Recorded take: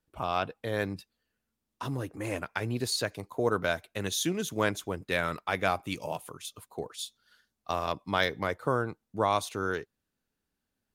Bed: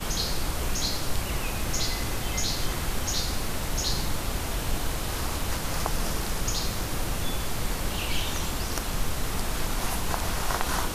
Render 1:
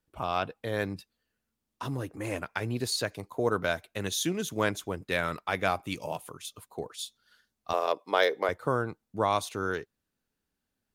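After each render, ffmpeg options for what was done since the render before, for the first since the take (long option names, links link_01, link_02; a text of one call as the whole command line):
ffmpeg -i in.wav -filter_complex "[0:a]asettb=1/sr,asplit=3[link_01][link_02][link_03];[link_01]atrim=end=7.734[link_04];[link_02]atrim=start=7.73:end=8.49,asetpts=PTS-STARTPTS,afade=type=in:duration=0.004:curve=qsin,afade=type=out:start_time=0.756:duration=0.004:curve=qsin,highpass=frequency=450:width_type=q:width=2.6[link_05];[link_03]atrim=start=8.486[link_06];[link_04][link_05]acrossfade=duration=0.004:curve1=hsin:curve2=qsin[link_07];[link_07][link_06]acrossfade=duration=0.004:curve1=qsin:curve2=hsin" out.wav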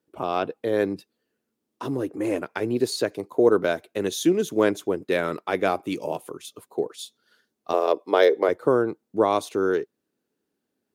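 ffmpeg -i in.wav -af "highpass=130,equalizer=frequency=370:width_type=o:width=1.4:gain=13" out.wav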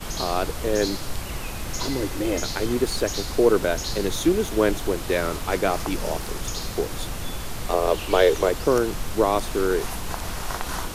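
ffmpeg -i in.wav -i bed.wav -filter_complex "[1:a]volume=-2dB[link_01];[0:a][link_01]amix=inputs=2:normalize=0" out.wav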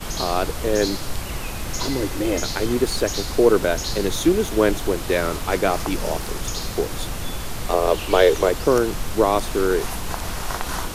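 ffmpeg -i in.wav -af "volume=2.5dB" out.wav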